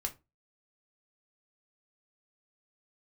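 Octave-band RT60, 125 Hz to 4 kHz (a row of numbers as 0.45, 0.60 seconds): 0.35, 0.30, 0.25, 0.25, 0.20, 0.15 seconds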